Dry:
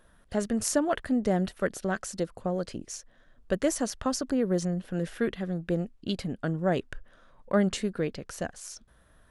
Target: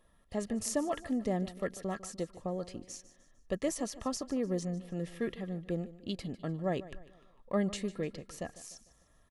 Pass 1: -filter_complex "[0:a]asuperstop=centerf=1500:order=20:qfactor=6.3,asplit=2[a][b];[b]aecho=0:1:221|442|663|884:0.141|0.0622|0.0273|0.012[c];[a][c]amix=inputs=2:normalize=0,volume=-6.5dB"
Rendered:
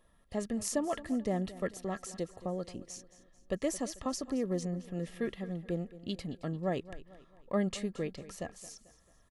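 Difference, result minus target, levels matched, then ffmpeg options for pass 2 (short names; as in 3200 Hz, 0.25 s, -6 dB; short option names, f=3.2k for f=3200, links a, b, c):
echo 71 ms late
-filter_complex "[0:a]asuperstop=centerf=1500:order=20:qfactor=6.3,asplit=2[a][b];[b]aecho=0:1:150|300|450|600:0.141|0.0622|0.0273|0.012[c];[a][c]amix=inputs=2:normalize=0,volume=-6.5dB"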